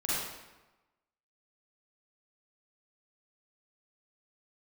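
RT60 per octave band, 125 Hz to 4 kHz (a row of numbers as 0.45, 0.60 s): 1.1, 1.1, 1.1, 1.1, 1.0, 0.80 s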